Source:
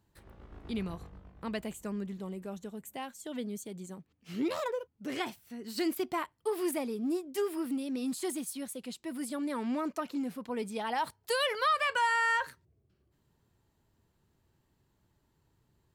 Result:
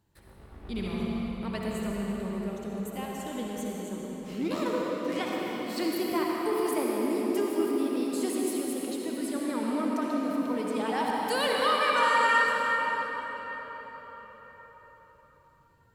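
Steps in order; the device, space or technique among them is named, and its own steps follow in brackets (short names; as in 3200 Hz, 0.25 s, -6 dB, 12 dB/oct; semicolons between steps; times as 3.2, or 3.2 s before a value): 0.55–1.06 flutter echo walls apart 11.9 m, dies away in 1.1 s; cathedral (reverb RT60 5.6 s, pre-delay 55 ms, DRR -3.5 dB)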